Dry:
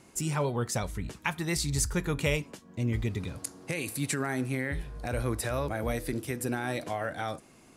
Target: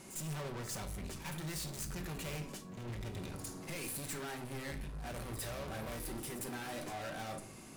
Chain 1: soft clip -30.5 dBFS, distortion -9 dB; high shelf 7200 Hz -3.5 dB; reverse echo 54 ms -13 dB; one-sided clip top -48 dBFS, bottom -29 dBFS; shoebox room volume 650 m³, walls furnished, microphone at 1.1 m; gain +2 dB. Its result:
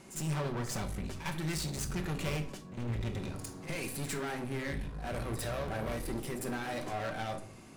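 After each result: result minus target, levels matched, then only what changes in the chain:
soft clip: distortion -6 dB; 8000 Hz band -4.0 dB
change: soft clip -42 dBFS, distortion -3 dB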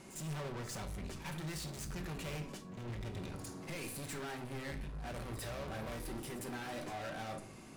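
8000 Hz band -3.5 dB
change: high shelf 7200 Hz +6.5 dB

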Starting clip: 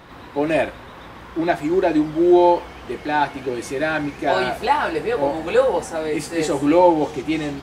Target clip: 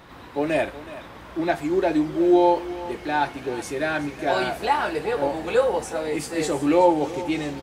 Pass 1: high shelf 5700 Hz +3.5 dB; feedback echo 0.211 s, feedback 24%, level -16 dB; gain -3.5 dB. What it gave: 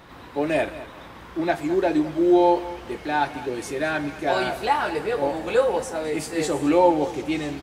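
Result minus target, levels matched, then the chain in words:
echo 0.16 s early
high shelf 5700 Hz +3.5 dB; feedback echo 0.371 s, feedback 24%, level -16 dB; gain -3.5 dB

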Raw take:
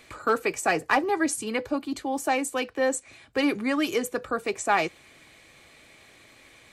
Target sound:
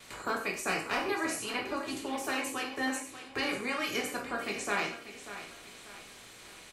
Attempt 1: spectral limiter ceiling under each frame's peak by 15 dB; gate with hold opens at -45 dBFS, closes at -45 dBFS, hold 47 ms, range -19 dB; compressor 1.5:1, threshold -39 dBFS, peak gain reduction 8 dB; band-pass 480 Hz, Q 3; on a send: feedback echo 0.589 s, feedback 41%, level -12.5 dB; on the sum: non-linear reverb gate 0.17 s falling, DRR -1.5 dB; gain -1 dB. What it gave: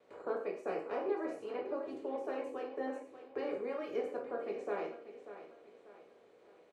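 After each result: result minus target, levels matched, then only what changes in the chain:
500 Hz band +7.0 dB; compressor: peak gain reduction -4 dB
remove: band-pass 480 Hz, Q 3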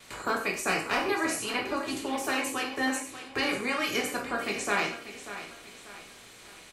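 compressor: peak gain reduction -4 dB
change: compressor 1.5:1, threshold -50.5 dBFS, peak gain reduction 11.5 dB

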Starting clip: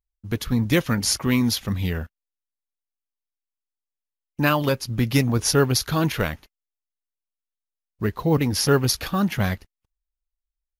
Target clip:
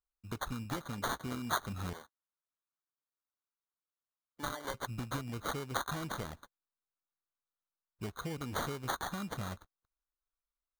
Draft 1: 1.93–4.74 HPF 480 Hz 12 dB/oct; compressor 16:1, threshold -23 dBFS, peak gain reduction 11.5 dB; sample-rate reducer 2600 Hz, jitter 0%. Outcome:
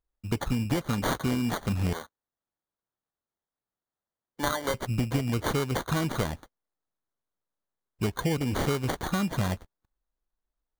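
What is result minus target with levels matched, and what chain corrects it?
4000 Hz band -2.5 dB
1.93–4.74 HPF 480 Hz 12 dB/oct; compressor 16:1, threshold -23 dBFS, peak gain reduction 11.5 dB; ladder low-pass 4200 Hz, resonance 85%; sample-rate reducer 2600 Hz, jitter 0%

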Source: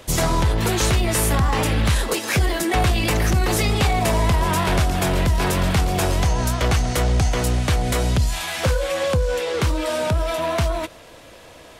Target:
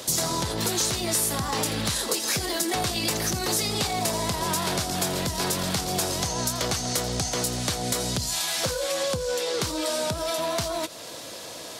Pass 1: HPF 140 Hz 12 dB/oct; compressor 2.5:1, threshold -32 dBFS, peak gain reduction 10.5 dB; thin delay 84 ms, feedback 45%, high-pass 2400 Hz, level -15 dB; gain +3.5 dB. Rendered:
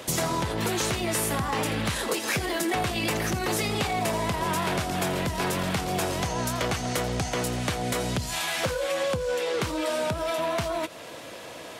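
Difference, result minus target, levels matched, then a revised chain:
8000 Hz band -5.0 dB
HPF 140 Hz 12 dB/oct; resonant high shelf 3400 Hz +7.5 dB, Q 1.5; compressor 2.5:1, threshold -32 dBFS, peak gain reduction 13 dB; thin delay 84 ms, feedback 45%, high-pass 2400 Hz, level -15 dB; gain +3.5 dB

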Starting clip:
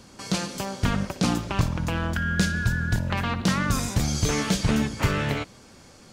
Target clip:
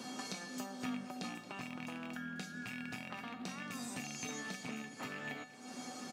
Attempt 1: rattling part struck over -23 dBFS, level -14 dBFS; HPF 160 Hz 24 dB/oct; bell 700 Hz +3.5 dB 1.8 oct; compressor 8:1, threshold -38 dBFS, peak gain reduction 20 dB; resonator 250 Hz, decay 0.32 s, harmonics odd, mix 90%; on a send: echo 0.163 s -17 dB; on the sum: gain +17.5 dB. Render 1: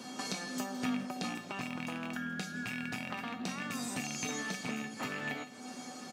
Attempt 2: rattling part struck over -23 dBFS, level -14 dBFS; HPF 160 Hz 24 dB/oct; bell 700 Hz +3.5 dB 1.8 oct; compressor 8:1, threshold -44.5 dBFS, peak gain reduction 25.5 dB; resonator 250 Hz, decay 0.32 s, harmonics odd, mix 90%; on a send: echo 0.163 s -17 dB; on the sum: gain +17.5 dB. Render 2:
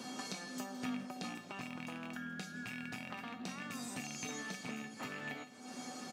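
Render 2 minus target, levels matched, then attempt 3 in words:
echo 62 ms early
rattling part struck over -23 dBFS, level -14 dBFS; HPF 160 Hz 24 dB/oct; bell 700 Hz +3.5 dB 1.8 oct; compressor 8:1, threshold -44.5 dBFS, peak gain reduction 25.5 dB; resonator 250 Hz, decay 0.32 s, harmonics odd, mix 90%; on a send: echo 0.225 s -17 dB; on the sum: gain +17.5 dB

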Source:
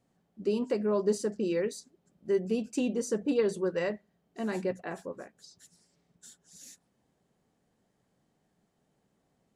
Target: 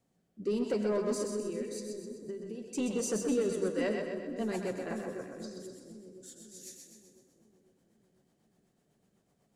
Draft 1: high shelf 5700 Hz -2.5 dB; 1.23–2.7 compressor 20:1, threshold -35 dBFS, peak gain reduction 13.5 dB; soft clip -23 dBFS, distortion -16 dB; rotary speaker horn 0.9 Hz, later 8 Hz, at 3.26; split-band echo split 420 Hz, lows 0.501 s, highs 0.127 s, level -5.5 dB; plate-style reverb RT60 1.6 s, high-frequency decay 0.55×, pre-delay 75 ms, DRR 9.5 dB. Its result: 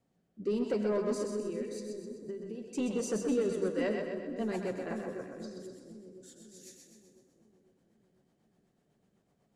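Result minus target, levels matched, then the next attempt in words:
8000 Hz band -5.0 dB
high shelf 5700 Hz +6 dB; 1.23–2.7 compressor 20:1, threshold -35 dBFS, peak gain reduction 13.5 dB; soft clip -23 dBFS, distortion -16 dB; rotary speaker horn 0.9 Hz, later 8 Hz, at 3.26; split-band echo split 420 Hz, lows 0.501 s, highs 0.127 s, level -5.5 dB; plate-style reverb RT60 1.6 s, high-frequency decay 0.55×, pre-delay 75 ms, DRR 9.5 dB

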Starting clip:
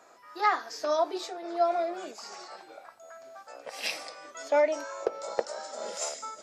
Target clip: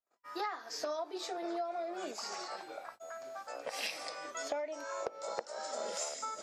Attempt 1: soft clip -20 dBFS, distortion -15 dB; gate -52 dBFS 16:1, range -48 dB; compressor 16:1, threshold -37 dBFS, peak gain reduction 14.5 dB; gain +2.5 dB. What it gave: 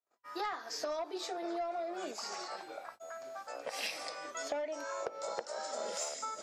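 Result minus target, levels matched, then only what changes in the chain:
soft clip: distortion +19 dB
change: soft clip -8.5 dBFS, distortion -34 dB

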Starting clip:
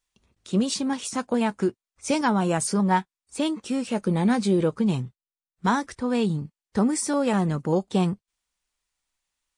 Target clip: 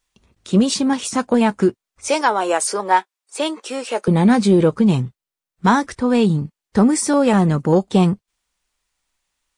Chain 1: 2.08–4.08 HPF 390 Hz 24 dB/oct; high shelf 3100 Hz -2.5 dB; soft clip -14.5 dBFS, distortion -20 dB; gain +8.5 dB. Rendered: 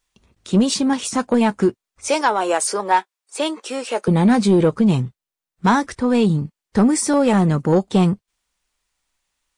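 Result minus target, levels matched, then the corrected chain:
soft clip: distortion +10 dB
2.08–4.08 HPF 390 Hz 24 dB/oct; high shelf 3100 Hz -2.5 dB; soft clip -8.5 dBFS, distortion -30 dB; gain +8.5 dB

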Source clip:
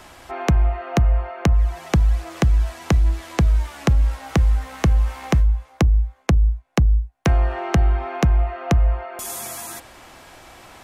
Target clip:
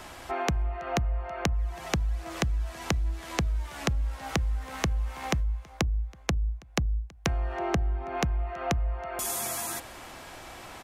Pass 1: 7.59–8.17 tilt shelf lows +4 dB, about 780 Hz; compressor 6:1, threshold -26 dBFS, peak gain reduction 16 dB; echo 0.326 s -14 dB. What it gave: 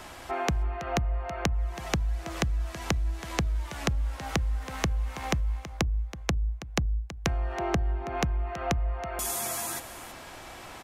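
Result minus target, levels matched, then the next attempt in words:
echo-to-direct +11.5 dB
7.59–8.17 tilt shelf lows +4 dB, about 780 Hz; compressor 6:1, threshold -26 dBFS, peak gain reduction 16 dB; echo 0.326 s -25.5 dB

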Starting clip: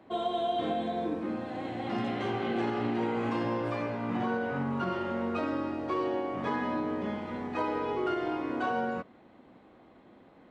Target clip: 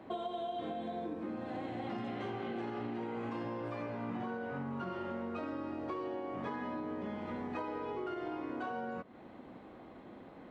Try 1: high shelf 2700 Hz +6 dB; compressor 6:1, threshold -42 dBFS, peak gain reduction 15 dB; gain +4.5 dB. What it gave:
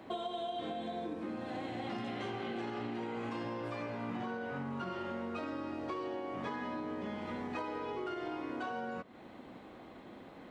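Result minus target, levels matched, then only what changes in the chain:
4000 Hz band +5.0 dB
change: high shelf 2700 Hz -4 dB

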